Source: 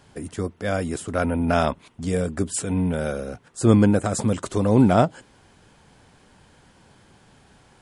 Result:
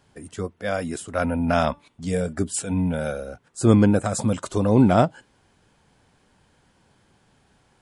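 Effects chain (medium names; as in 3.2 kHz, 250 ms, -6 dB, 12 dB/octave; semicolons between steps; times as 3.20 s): 1.68–2.33 s: de-hum 290.1 Hz, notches 37; spectral noise reduction 7 dB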